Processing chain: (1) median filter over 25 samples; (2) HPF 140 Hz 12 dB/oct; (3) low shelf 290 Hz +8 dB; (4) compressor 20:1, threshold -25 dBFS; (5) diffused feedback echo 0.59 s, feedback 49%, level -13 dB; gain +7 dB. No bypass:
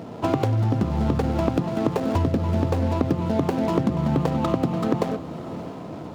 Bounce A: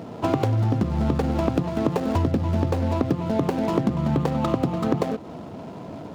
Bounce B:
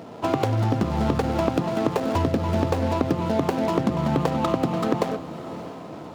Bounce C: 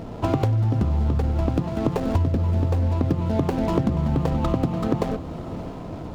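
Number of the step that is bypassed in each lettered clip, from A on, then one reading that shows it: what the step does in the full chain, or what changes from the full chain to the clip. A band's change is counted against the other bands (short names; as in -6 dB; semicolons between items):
5, echo-to-direct -12.0 dB to none; 3, 125 Hz band -5.0 dB; 2, 125 Hz band +4.5 dB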